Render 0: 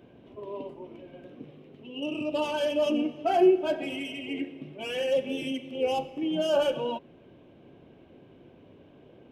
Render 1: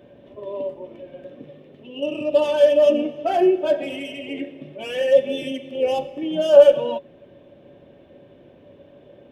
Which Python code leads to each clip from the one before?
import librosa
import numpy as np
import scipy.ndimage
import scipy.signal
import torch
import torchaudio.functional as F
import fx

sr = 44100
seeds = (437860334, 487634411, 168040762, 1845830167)

y = fx.small_body(x, sr, hz=(570.0, 1800.0, 3500.0), ring_ms=85, db=15)
y = y * librosa.db_to_amplitude(2.5)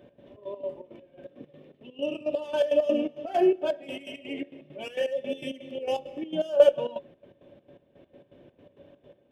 y = fx.step_gate(x, sr, bpm=166, pattern='x.xx.x.xx.x..x.', floor_db=-12.0, edge_ms=4.5)
y = y * librosa.db_to_amplitude(-4.5)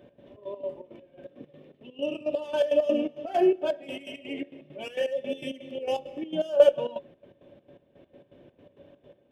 y = x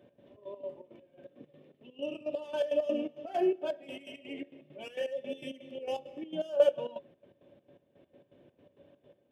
y = scipy.signal.sosfilt(scipy.signal.butter(2, 67.0, 'highpass', fs=sr, output='sos'), x)
y = y * librosa.db_to_amplitude(-6.5)